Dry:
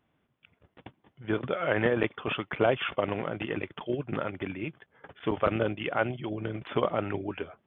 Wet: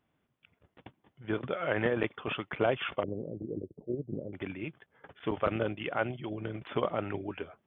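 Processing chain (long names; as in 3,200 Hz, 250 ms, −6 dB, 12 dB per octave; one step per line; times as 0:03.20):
0:03.03–0:04.33: Butterworth low-pass 520 Hz 36 dB per octave
level −3.5 dB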